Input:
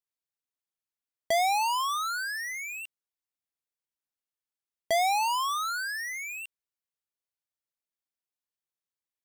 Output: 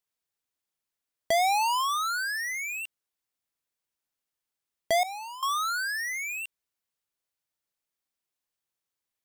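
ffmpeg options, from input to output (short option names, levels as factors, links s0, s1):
-filter_complex "[0:a]asettb=1/sr,asplit=3[s0][s1][s2];[s0]atrim=end=5.034[s3];[s1]atrim=start=5.03:end=5.43,asetpts=PTS-STARTPTS,afade=t=in:d=0.004:c=qsin,afade=t=out:st=0.396:d=0.004:c=qsin,agate=range=0.0224:threshold=0.126:ratio=3:detection=peak[s4];[s2]atrim=start=5.426[s5];[s3][s4]acrossfade=d=0.004:c1=hsin:c2=qsin[s6];[s6][s5]acrossfade=d=0.004:c1=qsin:c2=hsin,asplit=2[s7][s8];[s8]acompressor=threshold=0.00794:ratio=6,volume=0.841[s9];[s7][s9]amix=inputs=2:normalize=0"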